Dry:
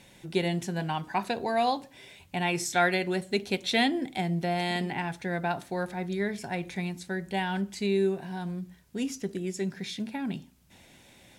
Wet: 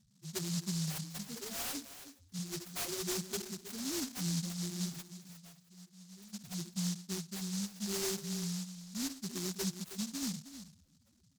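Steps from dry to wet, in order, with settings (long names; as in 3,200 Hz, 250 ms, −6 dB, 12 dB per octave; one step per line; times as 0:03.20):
samples in bit-reversed order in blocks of 16 samples
0:05.01–0:06.34: guitar amp tone stack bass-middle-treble 5-5-5
in parallel at +2 dB: compressor whose output falls as the input rises −30 dBFS, ratio −0.5
on the sum: rotating-speaker cabinet horn 0.9 Hz
spectral peaks only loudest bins 2
high-shelf EQ 8,900 Hz +9.5 dB
on a send: single-tap delay 318 ms −12.5 dB
on the sum: short delay modulated by noise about 5,500 Hz, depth 0.4 ms
level −9 dB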